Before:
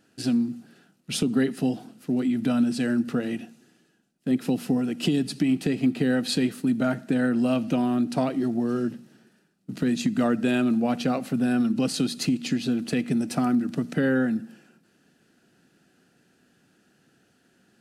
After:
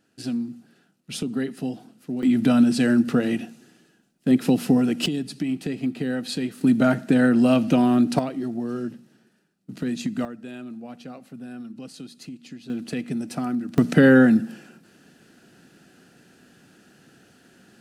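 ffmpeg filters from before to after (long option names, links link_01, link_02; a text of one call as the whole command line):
ffmpeg -i in.wav -af "asetnsamples=nb_out_samples=441:pad=0,asendcmd='2.23 volume volume 5.5dB;5.06 volume volume -3.5dB;6.61 volume volume 5.5dB;8.19 volume volume -3dB;10.25 volume volume -14.5dB;12.7 volume volume -3.5dB;13.78 volume volume 9dB',volume=-4dB" out.wav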